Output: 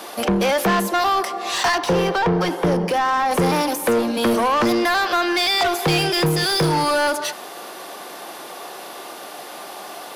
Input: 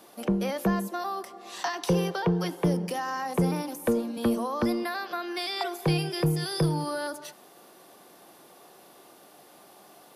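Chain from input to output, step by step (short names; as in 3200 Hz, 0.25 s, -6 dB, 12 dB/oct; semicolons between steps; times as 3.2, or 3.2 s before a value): overdrive pedal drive 24 dB, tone 5500 Hz, clips at -14 dBFS, from 1.78 s tone 1800 Hz, from 3.31 s tone 5100 Hz; gain +3.5 dB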